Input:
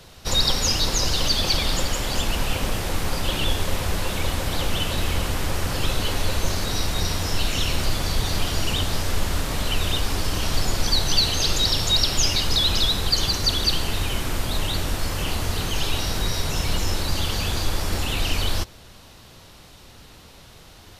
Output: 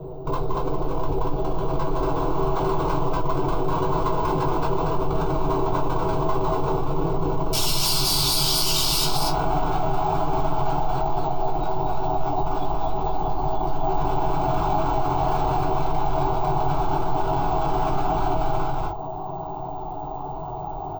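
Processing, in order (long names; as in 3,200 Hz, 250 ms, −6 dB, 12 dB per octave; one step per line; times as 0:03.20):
stylus tracing distortion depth 0.12 ms
speech leveller within 3 dB 0.5 s
low-pass with resonance 510 Hz, resonance Q 4.9, from 0:07.53 5,000 Hz, from 0:09.05 760 Hz
wave folding −18 dBFS
phaser with its sweep stopped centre 360 Hz, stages 8
single-tap delay 235 ms −3.5 dB
convolution reverb, pre-delay 3 ms, DRR −5 dB
bad sample-rate conversion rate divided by 2×, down filtered, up hold
envelope flattener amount 50%
level −6.5 dB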